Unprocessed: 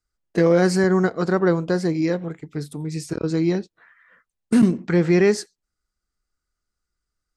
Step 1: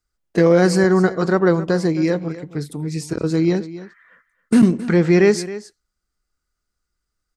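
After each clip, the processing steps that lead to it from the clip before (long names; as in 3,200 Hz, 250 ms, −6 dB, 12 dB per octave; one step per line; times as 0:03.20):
single-tap delay 268 ms −15.5 dB
level +3 dB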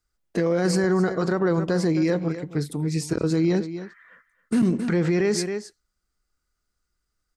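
brickwall limiter −13.5 dBFS, peak gain reduction 10.5 dB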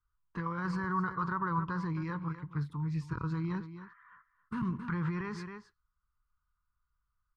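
drawn EQ curve 130 Hz 0 dB, 220 Hz −13 dB, 700 Hz −26 dB, 1,000 Hz +8 dB, 2,100 Hz −12 dB, 3,100 Hz −12 dB, 8,300 Hz −30 dB
level −2.5 dB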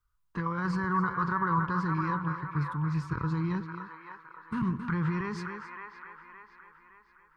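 delay with a band-pass on its return 566 ms, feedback 45%, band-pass 1,300 Hz, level −4 dB
level +4 dB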